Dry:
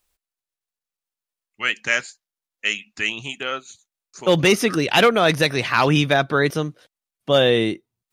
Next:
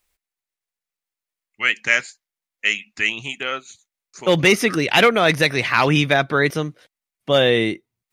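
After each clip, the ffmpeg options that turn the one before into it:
-af "equalizer=f=2.1k:t=o:w=0.46:g=6"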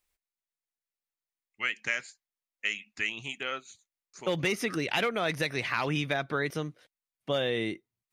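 -af "acompressor=threshold=-18dB:ratio=3,volume=-8.5dB"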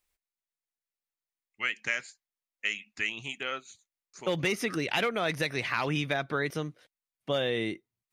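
-af anull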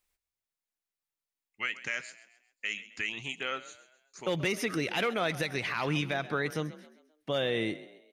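-filter_complex "[0:a]alimiter=limit=-20dB:level=0:latency=1,asplit=5[a][b][c][d][e];[b]adelay=132,afreqshift=38,volume=-16.5dB[f];[c]adelay=264,afreqshift=76,volume=-23.8dB[g];[d]adelay=396,afreqshift=114,volume=-31.2dB[h];[e]adelay=528,afreqshift=152,volume=-38.5dB[i];[a][f][g][h][i]amix=inputs=5:normalize=0"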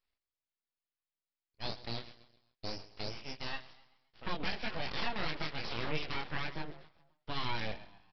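-af "flanger=delay=18.5:depth=8:speed=0.27,aresample=11025,aeval=exprs='abs(val(0))':c=same,aresample=44100"

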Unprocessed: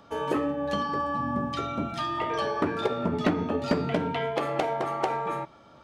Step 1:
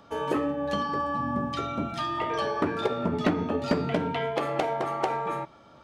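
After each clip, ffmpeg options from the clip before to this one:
-af anull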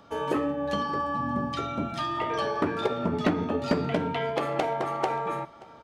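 -af "aecho=1:1:579:0.0794"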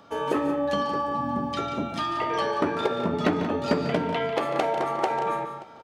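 -af "lowshelf=f=94:g=-9.5,aecho=1:1:145.8|180.8:0.251|0.282,volume=2dB"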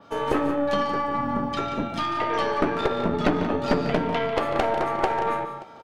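-af "adynamicequalizer=threshold=0.00251:dfrequency=7900:dqfactor=0.73:tfrequency=7900:tqfactor=0.73:attack=5:release=100:ratio=0.375:range=2:mode=cutabove:tftype=bell,aeval=exprs='(tanh(7.08*val(0)+0.7)-tanh(0.7))/7.08':c=same,volume=5.5dB"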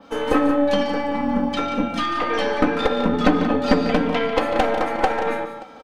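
-af "aecho=1:1:3.9:0.81,volume=2.5dB"

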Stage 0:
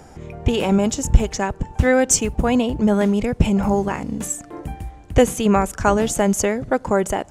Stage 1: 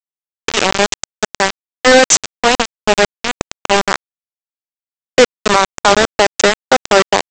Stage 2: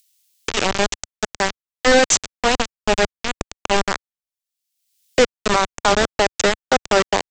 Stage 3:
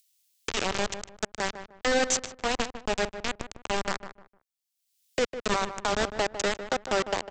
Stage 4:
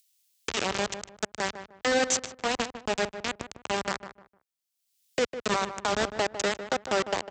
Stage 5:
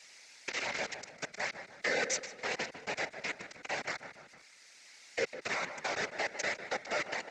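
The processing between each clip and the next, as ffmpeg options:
-af "highpass=f=340:w=0.5412,highpass=f=340:w=1.3066,aresample=16000,aeval=exprs='val(0)*gte(abs(val(0)),0.141)':c=same,aresample=44100,apsyclip=15.5dB,volume=-2dB"
-filter_complex "[0:a]lowshelf=f=94:g=10,acrossover=split=590|2700[a][b][c];[c]acompressor=mode=upward:threshold=-26dB:ratio=2.5[d];[a][b][d]amix=inputs=3:normalize=0,volume=-6dB"
-filter_complex "[0:a]alimiter=limit=-9.5dB:level=0:latency=1:release=63,asplit=2[a][b];[b]adelay=152,lowpass=f=1.6k:p=1,volume=-10dB,asplit=2[c][d];[d]adelay=152,lowpass=f=1.6k:p=1,volume=0.28,asplit=2[e][f];[f]adelay=152,lowpass=f=1.6k:p=1,volume=0.28[g];[a][c][e][g]amix=inputs=4:normalize=0,volume=-6.5dB"
-af "highpass=68"
-af "aeval=exprs='val(0)+0.5*0.0112*sgn(val(0))':c=same,highpass=350,equalizer=f=380:t=q:w=4:g=-9,equalizer=f=700:t=q:w=4:g=-3,equalizer=f=1.1k:t=q:w=4:g=-10,equalizer=f=2.1k:t=q:w=4:g=9,equalizer=f=3.2k:t=q:w=4:g=-8,lowpass=f=6.7k:w=0.5412,lowpass=f=6.7k:w=1.3066,afftfilt=real='hypot(re,im)*cos(2*PI*random(0))':imag='hypot(re,im)*sin(2*PI*random(1))':win_size=512:overlap=0.75"

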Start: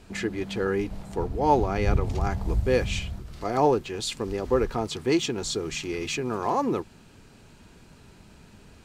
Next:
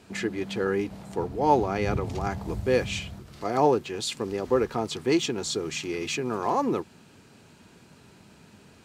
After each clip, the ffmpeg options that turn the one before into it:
-af "highpass=110"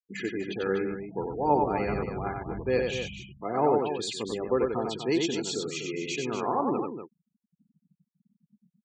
-filter_complex "[0:a]equalizer=f=86:w=4:g=-12.5,afftfilt=real='re*gte(hypot(re,im),0.0224)':imag='im*gte(hypot(re,im),0.0224)':win_size=1024:overlap=0.75,asplit=2[a][b];[b]aecho=0:1:93.29|244.9:0.631|0.355[c];[a][c]amix=inputs=2:normalize=0,volume=-3.5dB"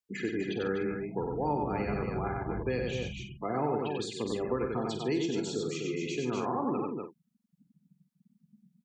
-filter_complex "[0:a]acrossover=split=280|1300[a][b][c];[a]acompressor=threshold=-35dB:ratio=4[d];[b]acompressor=threshold=-37dB:ratio=4[e];[c]acompressor=threshold=-45dB:ratio=4[f];[d][e][f]amix=inputs=3:normalize=0,asplit=2[g][h];[h]adelay=48,volume=-9.5dB[i];[g][i]amix=inputs=2:normalize=0,volume=2.5dB"

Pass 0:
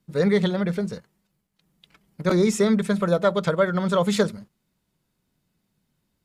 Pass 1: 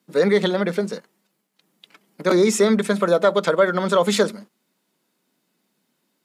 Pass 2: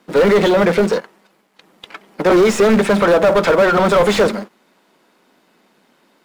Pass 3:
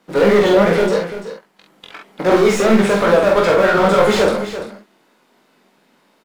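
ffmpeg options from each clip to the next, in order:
-filter_complex "[0:a]highpass=f=230:w=0.5412,highpass=f=230:w=1.3066,asplit=2[a][b];[b]alimiter=limit=-16.5dB:level=0:latency=1:release=60,volume=0.5dB[c];[a][c]amix=inputs=2:normalize=0"
-filter_complex "[0:a]aeval=exprs='if(lt(val(0),0),0.447*val(0),val(0))':c=same,acrusher=bits=5:mode=log:mix=0:aa=0.000001,asplit=2[a][b];[b]highpass=f=720:p=1,volume=32dB,asoftclip=type=tanh:threshold=-3dB[c];[a][c]amix=inputs=2:normalize=0,lowpass=f=1.1k:p=1,volume=-6dB"
-filter_complex "[0:a]flanger=delay=18.5:depth=3.3:speed=2.9,asplit=2[a][b];[b]adelay=46,volume=-3.5dB[c];[a][c]amix=inputs=2:normalize=0,aecho=1:1:340:0.266,volume=1dB"

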